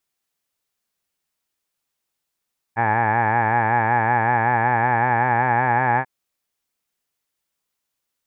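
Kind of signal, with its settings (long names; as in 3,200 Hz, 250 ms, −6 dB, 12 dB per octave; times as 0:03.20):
vowel from formants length 3.29 s, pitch 111 Hz, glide +2 semitones, F1 840 Hz, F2 1,700 Hz, F3 2,300 Hz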